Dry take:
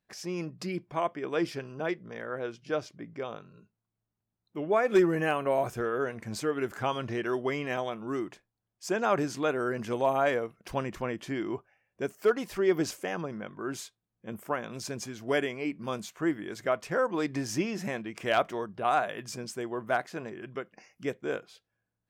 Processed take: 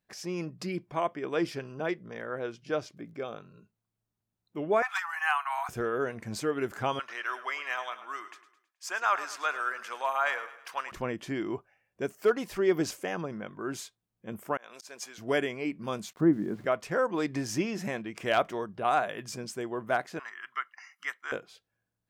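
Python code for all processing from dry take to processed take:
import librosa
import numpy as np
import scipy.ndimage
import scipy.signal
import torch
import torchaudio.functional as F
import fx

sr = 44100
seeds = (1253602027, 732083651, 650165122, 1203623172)

y = fx.notch_comb(x, sr, f0_hz=960.0, at=(2.94, 3.36), fade=0.02)
y = fx.dmg_crackle(y, sr, seeds[0], per_s=48.0, level_db=-57.0, at=(2.94, 3.36), fade=0.02)
y = fx.chain(y, sr, fx.steep_highpass(hz=760.0, slope=96),
    fx.peak_eq(hz=1300.0, db=6.5, octaves=1.2), at=(4.82, 5.69))
y = fx.chain(y, sr, fx.highpass_res(hz=1200.0, q=1.7),
    fx.echo_feedback(ms=106, feedback_pct=44, wet_db=-14.0), at=(6.99, 10.92))
y = fx.chain(y, sr, fx.highpass(hz=690.0, slope=12),
    fx.auto_swell(attack_ms=154.0), at=(14.57, 15.18))
y = fx.chain(y, sr, fx.lowpass(hz=1200.0, slope=12),
    fx.peak_eq(hz=200.0, db=11.5, octaves=1.4),
    fx.sample_gate(floor_db=-52.5), at=(16.13, 16.65))
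y = fx.chain(y, sr, fx.highpass_res(hz=1400.0, q=5.2),
    fx.comb(ms=1.0, depth=0.61), at=(20.19, 21.32))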